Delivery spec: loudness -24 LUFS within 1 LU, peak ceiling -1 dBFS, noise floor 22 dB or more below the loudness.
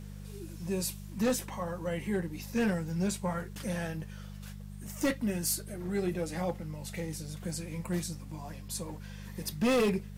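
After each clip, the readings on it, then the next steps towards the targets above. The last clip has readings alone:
clipped 1.2%; flat tops at -23.0 dBFS; hum 50 Hz; harmonics up to 200 Hz; hum level -41 dBFS; loudness -34.0 LUFS; peak -23.0 dBFS; loudness target -24.0 LUFS
-> clip repair -23 dBFS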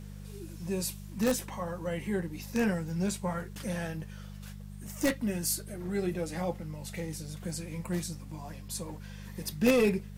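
clipped 0.0%; hum 50 Hz; harmonics up to 200 Hz; hum level -41 dBFS
-> de-hum 50 Hz, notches 4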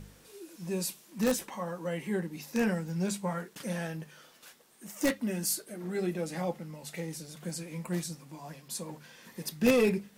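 hum none; loudness -33.0 LUFS; peak -13.0 dBFS; loudness target -24.0 LUFS
-> gain +9 dB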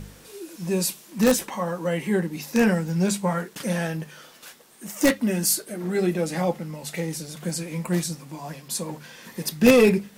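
loudness -24.0 LUFS; peak -4.0 dBFS; noise floor -50 dBFS

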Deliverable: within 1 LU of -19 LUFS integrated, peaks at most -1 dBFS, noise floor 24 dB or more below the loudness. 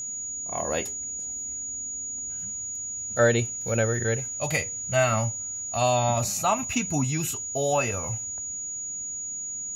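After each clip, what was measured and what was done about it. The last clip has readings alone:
steady tone 6800 Hz; tone level -31 dBFS; loudness -26.5 LUFS; peak -9.5 dBFS; loudness target -19.0 LUFS
-> notch 6800 Hz, Q 30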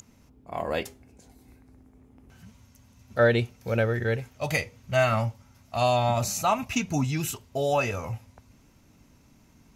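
steady tone none; loudness -27.0 LUFS; peak -10.5 dBFS; loudness target -19.0 LUFS
-> gain +8 dB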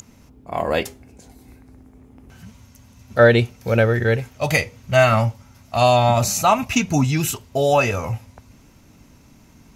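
loudness -19.0 LUFS; peak -2.5 dBFS; noise floor -51 dBFS

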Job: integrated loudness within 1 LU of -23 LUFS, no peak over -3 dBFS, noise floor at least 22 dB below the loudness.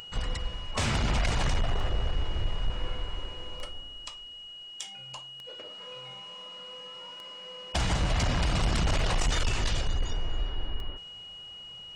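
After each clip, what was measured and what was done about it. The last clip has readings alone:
clicks 7; steady tone 2900 Hz; tone level -42 dBFS; loudness -33.0 LUFS; peak -20.0 dBFS; loudness target -23.0 LUFS
-> de-click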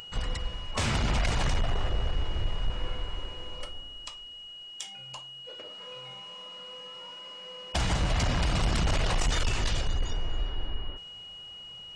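clicks 0; steady tone 2900 Hz; tone level -42 dBFS
-> notch 2900 Hz, Q 30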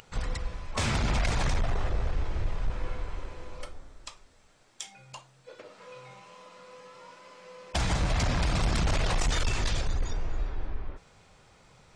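steady tone none; loudness -31.5 LUFS; peak -15.5 dBFS; loudness target -23.0 LUFS
-> gain +8.5 dB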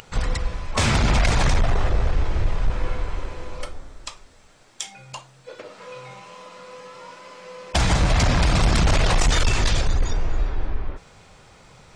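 loudness -23.0 LUFS; peak -7.0 dBFS; noise floor -51 dBFS

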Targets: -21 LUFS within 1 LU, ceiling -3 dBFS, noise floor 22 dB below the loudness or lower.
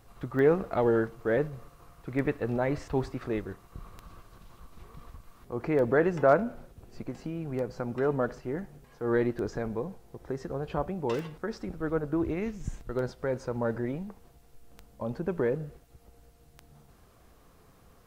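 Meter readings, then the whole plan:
clicks 10; loudness -30.5 LUFS; peak -9.5 dBFS; loudness target -21.0 LUFS
-> de-click; gain +9.5 dB; limiter -3 dBFS

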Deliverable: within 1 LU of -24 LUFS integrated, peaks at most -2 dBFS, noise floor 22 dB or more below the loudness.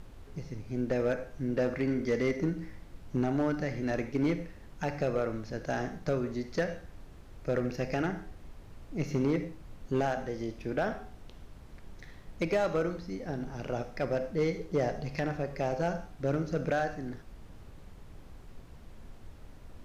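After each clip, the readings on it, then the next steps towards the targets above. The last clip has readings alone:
clipped 0.8%; flat tops at -21.5 dBFS; noise floor -51 dBFS; noise floor target -55 dBFS; loudness -33.0 LUFS; peak -21.5 dBFS; loudness target -24.0 LUFS
-> clip repair -21.5 dBFS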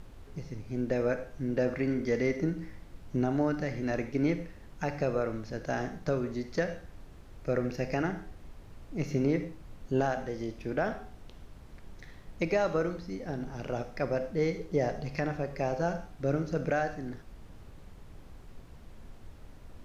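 clipped 0.0%; noise floor -51 dBFS; noise floor target -55 dBFS
-> noise print and reduce 6 dB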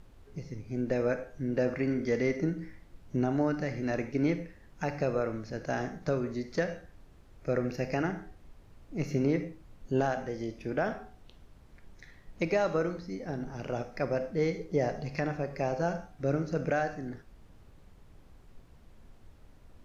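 noise floor -57 dBFS; loudness -32.5 LUFS; peak -16.0 dBFS; loudness target -24.0 LUFS
-> gain +8.5 dB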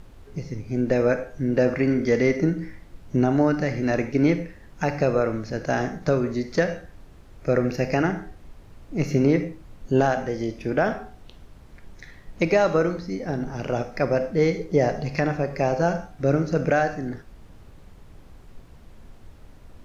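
loudness -24.0 LUFS; peak -7.5 dBFS; noise floor -48 dBFS

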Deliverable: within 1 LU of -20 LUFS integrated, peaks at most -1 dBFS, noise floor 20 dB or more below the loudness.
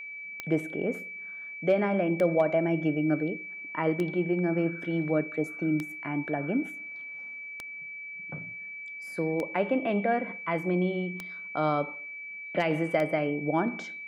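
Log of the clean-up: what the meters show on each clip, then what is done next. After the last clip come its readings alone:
clicks 8; steady tone 2300 Hz; tone level -38 dBFS; loudness -30.0 LUFS; peak -14.0 dBFS; loudness target -20.0 LUFS
-> de-click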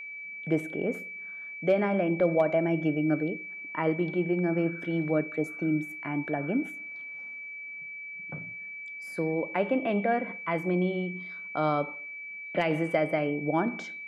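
clicks 0; steady tone 2300 Hz; tone level -38 dBFS
-> notch 2300 Hz, Q 30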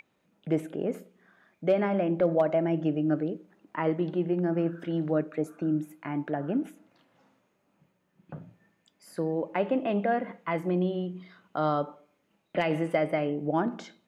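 steady tone none; loudness -29.0 LUFS; peak -14.0 dBFS; loudness target -20.0 LUFS
-> gain +9 dB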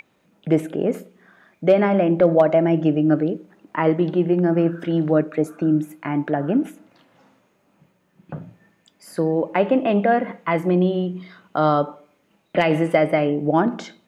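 loudness -20.0 LUFS; peak -5.0 dBFS; noise floor -64 dBFS

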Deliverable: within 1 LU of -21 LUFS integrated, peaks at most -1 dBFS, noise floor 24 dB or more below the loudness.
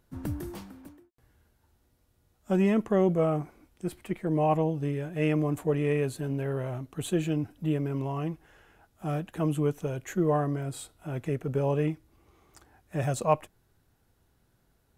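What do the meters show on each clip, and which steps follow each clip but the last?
loudness -29.5 LUFS; peak -10.0 dBFS; loudness target -21.0 LUFS
-> gain +8.5 dB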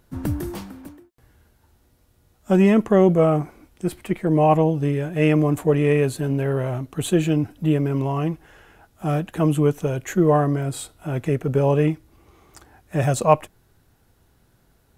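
loudness -21.0 LUFS; peak -1.5 dBFS; noise floor -61 dBFS

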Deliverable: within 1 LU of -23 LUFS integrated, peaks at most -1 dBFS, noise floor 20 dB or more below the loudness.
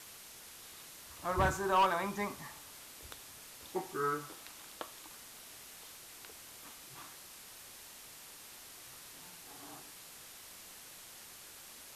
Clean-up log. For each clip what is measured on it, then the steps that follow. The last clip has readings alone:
clipped 0.3%; flat tops at -23.0 dBFS; noise floor -53 dBFS; noise floor target -61 dBFS; loudness -40.5 LUFS; peak -23.0 dBFS; loudness target -23.0 LUFS
-> clip repair -23 dBFS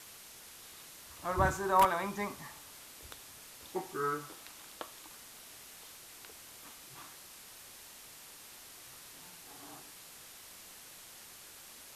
clipped 0.0%; noise floor -53 dBFS; noise floor target -56 dBFS
-> denoiser 6 dB, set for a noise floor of -53 dBFS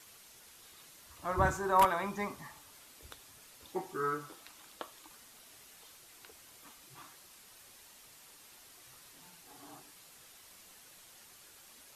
noise floor -58 dBFS; loudness -33.5 LUFS; peak -14.0 dBFS; loudness target -23.0 LUFS
-> gain +10.5 dB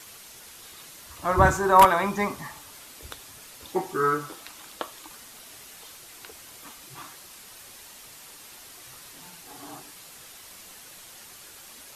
loudness -23.0 LUFS; peak -3.5 dBFS; noise floor -47 dBFS

